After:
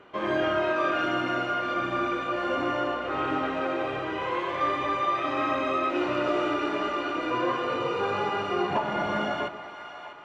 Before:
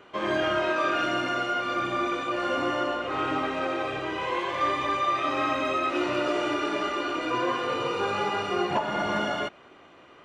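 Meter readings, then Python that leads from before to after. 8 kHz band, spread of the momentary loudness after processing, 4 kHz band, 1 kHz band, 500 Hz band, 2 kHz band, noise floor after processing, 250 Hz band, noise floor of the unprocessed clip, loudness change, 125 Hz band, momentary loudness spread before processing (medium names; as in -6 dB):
no reading, 4 LU, -3.0 dB, -0.5 dB, +0.5 dB, -1.0 dB, -41 dBFS, +0.5 dB, -52 dBFS, -0.5 dB, +0.5 dB, 4 LU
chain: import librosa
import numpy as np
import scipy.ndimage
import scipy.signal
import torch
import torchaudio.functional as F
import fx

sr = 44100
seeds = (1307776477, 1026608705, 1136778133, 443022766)

y = fx.high_shelf(x, sr, hz=4400.0, db=-11.0)
y = fx.echo_split(y, sr, split_hz=680.0, low_ms=127, high_ms=645, feedback_pct=52, wet_db=-11.5)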